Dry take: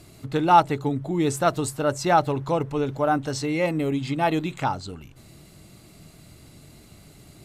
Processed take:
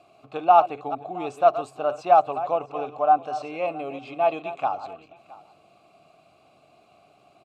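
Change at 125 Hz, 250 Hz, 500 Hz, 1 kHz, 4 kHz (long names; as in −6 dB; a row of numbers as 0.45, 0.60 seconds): −19.5, −12.5, +1.0, +2.0, −9.5 decibels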